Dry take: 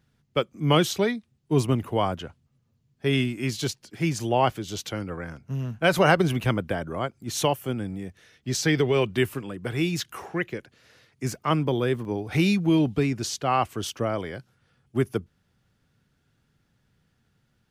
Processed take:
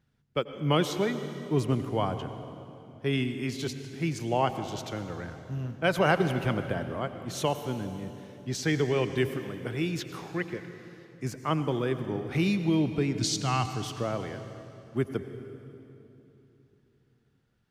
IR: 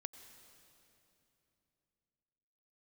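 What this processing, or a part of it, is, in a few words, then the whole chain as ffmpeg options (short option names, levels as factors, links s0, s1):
swimming-pool hall: -filter_complex "[0:a]asettb=1/sr,asplit=3[s0][s1][s2];[s0]atrim=end=13.154[s3];[s1]atrim=start=13.15:end=13.66,asetpts=PTS-STARTPTS,afade=t=in:d=0.004:c=qsin,afade=t=out:st=0.506:d=0.004:c=qsin,equalizer=f=125:t=o:w=1:g=9,equalizer=f=500:t=o:w=1:g=-10,equalizer=f=4000:t=o:w=1:g=9,equalizer=f=8000:t=o:w=1:g=8[s4];[s2]atrim=start=13.656[s5];[s3][s4]acrossfade=d=0.004:c1=hsin:c2=qsin[s6];[s6][s5]acrossfade=d=0.004:c1=qsin:c2=hsin[s7];[1:a]atrim=start_sample=2205[s8];[s7][s8]afir=irnorm=-1:irlink=0,highshelf=f=4700:g=-5.5"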